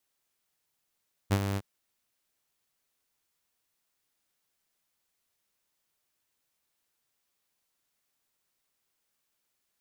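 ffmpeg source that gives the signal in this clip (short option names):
-f lavfi -i "aevalsrc='0.126*(2*mod(99*t,1)-1)':d=0.312:s=44100,afade=t=in:d=0.026,afade=t=out:st=0.026:d=0.059:silence=0.398,afade=t=out:st=0.27:d=0.042"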